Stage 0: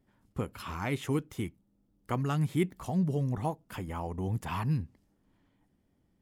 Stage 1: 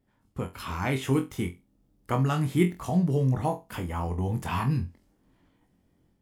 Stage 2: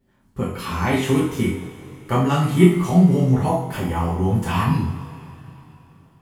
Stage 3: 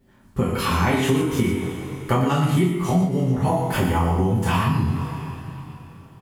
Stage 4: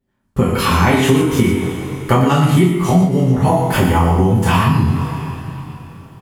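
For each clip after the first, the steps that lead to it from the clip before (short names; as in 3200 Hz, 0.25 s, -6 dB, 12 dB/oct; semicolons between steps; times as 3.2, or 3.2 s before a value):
AGC gain up to 6 dB; on a send: flutter echo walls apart 3.9 m, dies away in 0.23 s; on the sum: gain -2 dB
two-slope reverb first 0.51 s, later 3.4 s, from -18 dB, DRR -5 dB; gain +2 dB
compressor 12:1, threshold -23 dBFS, peak gain reduction 17 dB; echo 0.119 s -9 dB; gain +6.5 dB
gate with hold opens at -38 dBFS; gain +7 dB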